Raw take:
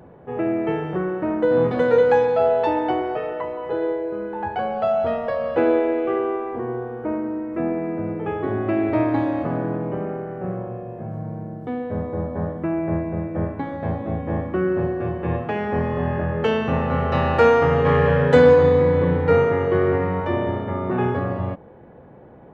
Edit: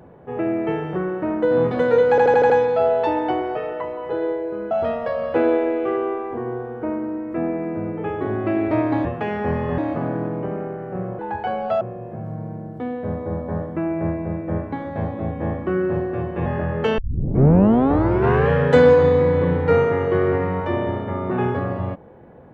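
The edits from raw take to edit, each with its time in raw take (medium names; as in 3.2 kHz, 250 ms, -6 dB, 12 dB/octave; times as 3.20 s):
2.10 s: stutter 0.08 s, 6 plays
4.31–4.93 s: move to 10.68 s
15.33–16.06 s: move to 9.27 s
16.58 s: tape start 1.52 s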